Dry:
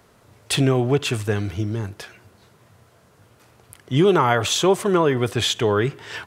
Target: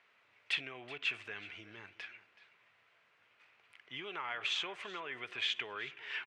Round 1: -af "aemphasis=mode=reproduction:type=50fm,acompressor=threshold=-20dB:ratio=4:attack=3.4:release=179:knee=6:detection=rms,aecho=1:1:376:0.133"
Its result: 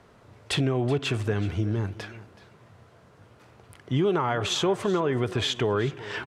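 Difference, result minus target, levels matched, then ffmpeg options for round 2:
2,000 Hz band −8.5 dB
-af "aemphasis=mode=reproduction:type=50fm,acompressor=threshold=-20dB:ratio=4:attack=3.4:release=179:knee=6:detection=rms,bandpass=frequency=2400:width_type=q:width=2.8:csg=0,aecho=1:1:376:0.133"

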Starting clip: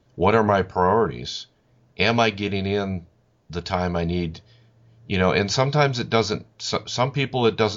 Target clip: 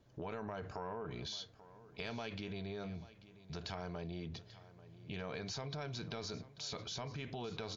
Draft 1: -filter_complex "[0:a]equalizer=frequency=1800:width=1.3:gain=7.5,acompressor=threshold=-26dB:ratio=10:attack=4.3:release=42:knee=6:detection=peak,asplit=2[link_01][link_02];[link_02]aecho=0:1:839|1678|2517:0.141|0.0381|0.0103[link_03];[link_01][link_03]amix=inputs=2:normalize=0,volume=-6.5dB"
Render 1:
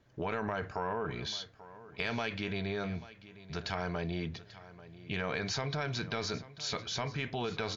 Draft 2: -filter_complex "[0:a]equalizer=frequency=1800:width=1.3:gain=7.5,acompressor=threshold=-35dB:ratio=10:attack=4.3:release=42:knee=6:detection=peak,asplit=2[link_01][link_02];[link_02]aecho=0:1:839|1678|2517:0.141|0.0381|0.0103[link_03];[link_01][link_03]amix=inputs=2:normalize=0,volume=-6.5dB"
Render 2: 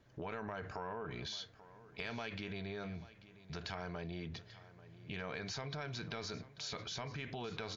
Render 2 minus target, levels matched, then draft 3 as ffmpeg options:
2,000 Hz band +4.0 dB
-filter_complex "[0:a]acompressor=threshold=-35dB:ratio=10:attack=4.3:release=42:knee=6:detection=peak,asplit=2[link_01][link_02];[link_02]aecho=0:1:839|1678|2517:0.141|0.0381|0.0103[link_03];[link_01][link_03]amix=inputs=2:normalize=0,volume=-6.5dB"

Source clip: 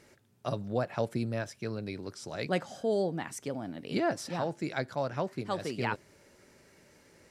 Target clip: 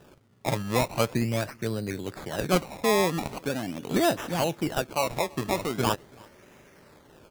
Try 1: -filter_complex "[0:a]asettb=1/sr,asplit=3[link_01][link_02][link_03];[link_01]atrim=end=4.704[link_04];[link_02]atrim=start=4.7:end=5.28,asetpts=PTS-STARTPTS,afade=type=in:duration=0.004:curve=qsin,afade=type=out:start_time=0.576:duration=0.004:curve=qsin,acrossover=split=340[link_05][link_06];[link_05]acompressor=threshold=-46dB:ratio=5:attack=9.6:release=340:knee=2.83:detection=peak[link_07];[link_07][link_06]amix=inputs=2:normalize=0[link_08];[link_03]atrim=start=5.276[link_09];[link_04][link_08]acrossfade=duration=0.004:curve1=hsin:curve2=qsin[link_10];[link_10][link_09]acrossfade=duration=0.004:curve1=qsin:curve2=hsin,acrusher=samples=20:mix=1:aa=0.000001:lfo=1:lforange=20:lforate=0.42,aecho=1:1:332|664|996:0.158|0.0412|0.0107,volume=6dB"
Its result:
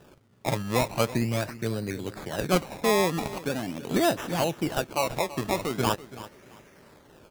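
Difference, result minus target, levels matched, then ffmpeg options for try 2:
echo-to-direct +10.5 dB
-filter_complex "[0:a]asettb=1/sr,asplit=3[link_01][link_02][link_03];[link_01]atrim=end=4.704[link_04];[link_02]atrim=start=4.7:end=5.28,asetpts=PTS-STARTPTS,afade=type=in:duration=0.004:curve=qsin,afade=type=out:start_time=0.576:duration=0.004:curve=qsin,acrossover=split=340[link_05][link_06];[link_05]acompressor=threshold=-46dB:ratio=5:attack=9.6:release=340:knee=2.83:detection=peak[link_07];[link_07][link_06]amix=inputs=2:normalize=0[link_08];[link_03]atrim=start=5.276[link_09];[link_04][link_08]acrossfade=duration=0.004:curve1=hsin:curve2=qsin[link_10];[link_10][link_09]acrossfade=duration=0.004:curve1=qsin:curve2=hsin,acrusher=samples=20:mix=1:aa=0.000001:lfo=1:lforange=20:lforate=0.42,aecho=1:1:332|664:0.0473|0.0123,volume=6dB"

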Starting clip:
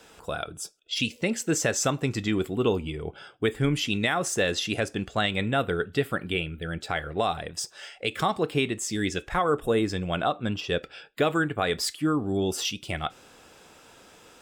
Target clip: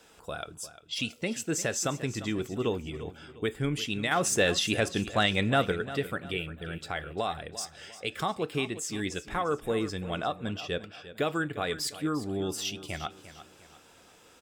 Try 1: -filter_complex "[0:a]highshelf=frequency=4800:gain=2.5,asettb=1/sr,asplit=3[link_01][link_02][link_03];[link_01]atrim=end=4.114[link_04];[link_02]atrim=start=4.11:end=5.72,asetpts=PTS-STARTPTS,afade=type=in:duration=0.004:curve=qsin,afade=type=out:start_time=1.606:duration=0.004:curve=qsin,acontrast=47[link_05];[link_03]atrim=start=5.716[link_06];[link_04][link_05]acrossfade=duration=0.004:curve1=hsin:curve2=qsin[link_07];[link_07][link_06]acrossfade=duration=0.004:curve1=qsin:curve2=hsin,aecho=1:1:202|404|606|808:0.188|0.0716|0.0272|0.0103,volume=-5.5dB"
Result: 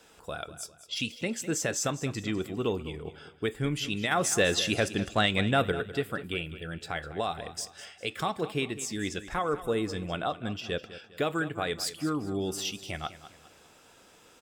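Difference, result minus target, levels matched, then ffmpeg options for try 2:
echo 148 ms early
-filter_complex "[0:a]highshelf=frequency=4800:gain=2.5,asettb=1/sr,asplit=3[link_01][link_02][link_03];[link_01]atrim=end=4.114[link_04];[link_02]atrim=start=4.11:end=5.72,asetpts=PTS-STARTPTS,afade=type=in:duration=0.004:curve=qsin,afade=type=out:start_time=1.606:duration=0.004:curve=qsin,acontrast=47[link_05];[link_03]atrim=start=5.716[link_06];[link_04][link_05]acrossfade=duration=0.004:curve1=hsin:curve2=qsin[link_07];[link_07][link_06]acrossfade=duration=0.004:curve1=qsin:curve2=hsin,aecho=1:1:350|700|1050|1400:0.188|0.0716|0.0272|0.0103,volume=-5.5dB"

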